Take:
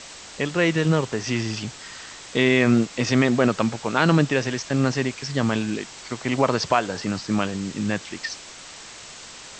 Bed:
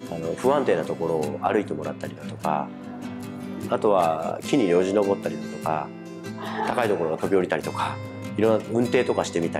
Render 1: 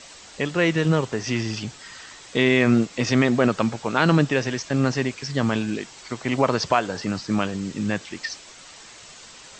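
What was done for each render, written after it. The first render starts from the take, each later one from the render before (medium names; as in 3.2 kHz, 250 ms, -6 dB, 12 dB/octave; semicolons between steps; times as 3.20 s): noise reduction 6 dB, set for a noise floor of -42 dBFS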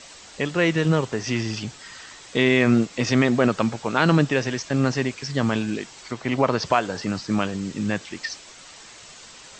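6.11–6.65 s: distance through air 60 m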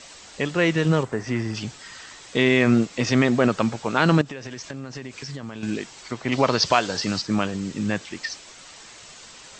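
1.03–1.55 s: high-order bell 4.2 kHz -9.5 dB; 4.21–5.63 s: compression 10:1, threshold -30 dBFS; 6.32–7.22 s: peaking EQ 4.7 kHz +10 dB 1.5 oct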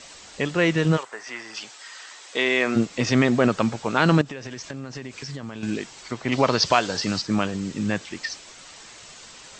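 0.96–2.75 s: high-pass 960 Hz -> 390 Hz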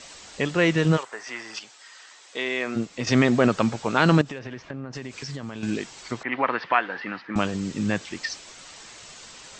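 1.59–3.07 s: gain -6 dB; 4.38–4.92 s: low-pass 3.4 kHz -> 1.6 kHz; 6.23–7.36 s: cabinet simulation 370–2400 Hz, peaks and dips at 420 Hz -7 dB, 610 Hz -8 dB, 1.8 kHz +6 dB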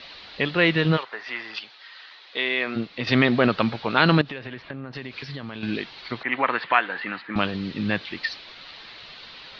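elliptic low-pass 4.2 kHz, stop band 50 dB; treble shelf 2.6 kHz +10 dB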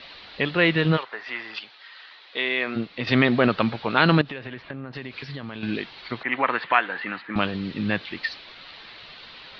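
low-pass 4.7 kHz 12 dB/octave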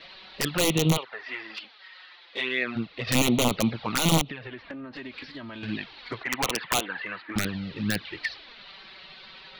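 integer overflow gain 11.5 dB; touch-sensitive flanger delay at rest 6.8 ms, full sweep at -18.5 dBFS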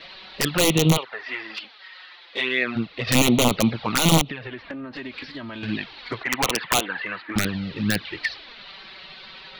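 trim +4.5 dB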